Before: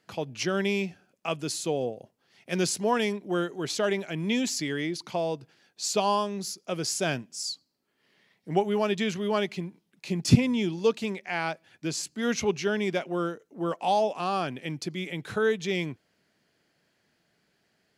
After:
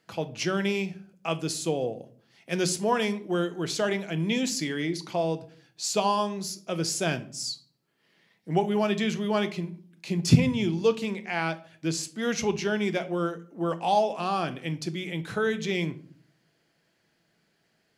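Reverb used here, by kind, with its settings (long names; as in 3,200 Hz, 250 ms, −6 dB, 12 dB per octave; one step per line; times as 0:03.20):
rectangular room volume 490 cubic metres, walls furnished, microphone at 0.7 metres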